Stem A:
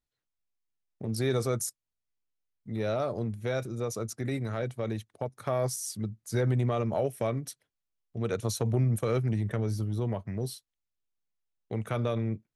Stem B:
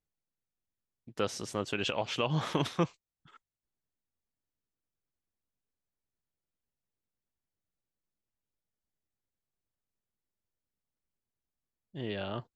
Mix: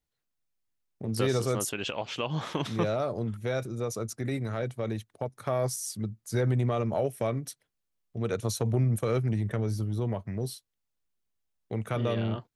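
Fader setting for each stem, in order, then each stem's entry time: +0.5, -1.0 dB; 0.00, 0.00 s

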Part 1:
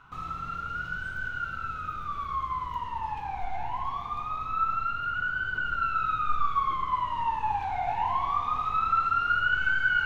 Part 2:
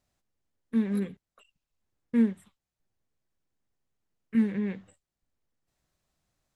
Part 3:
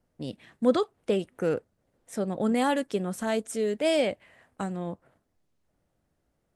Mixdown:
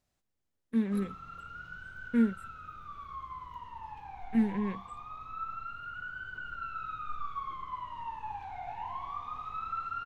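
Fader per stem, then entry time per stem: -11.5 dB, -2.5 dB, off; 0.80 s, 0.00 s, off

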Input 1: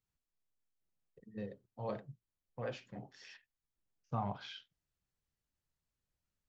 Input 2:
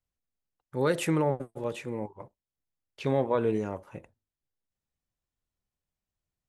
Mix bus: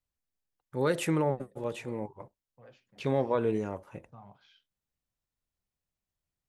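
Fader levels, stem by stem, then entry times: -14.5, -1.5 dB; 0.00, 0.00 s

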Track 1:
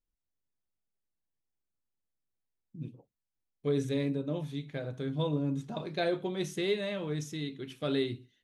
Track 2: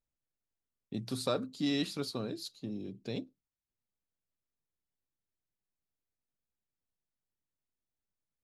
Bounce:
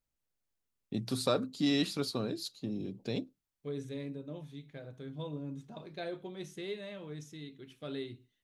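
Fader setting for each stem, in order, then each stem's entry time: -9.5, +2.5 dB; 0.00, 0.00 s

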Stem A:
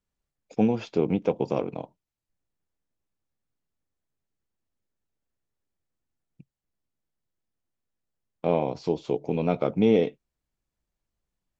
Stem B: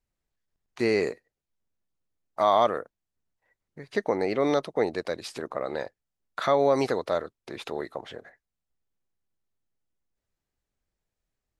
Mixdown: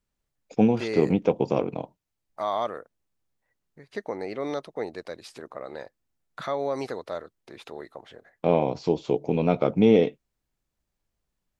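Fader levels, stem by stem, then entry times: +2.5, -6.5 dB; 0.00, 0.00 s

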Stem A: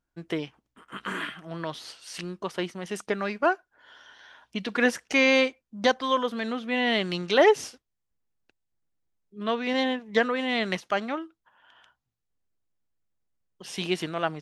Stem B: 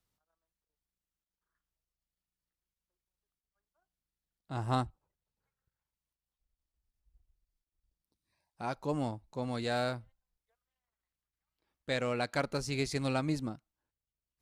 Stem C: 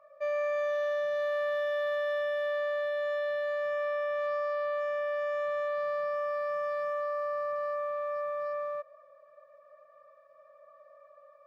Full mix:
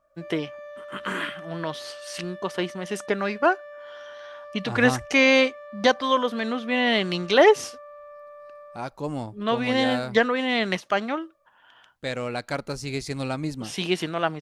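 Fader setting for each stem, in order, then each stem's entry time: +3.0, +3.0, -10.5 dB; 0.00, 0.15, 0.00 s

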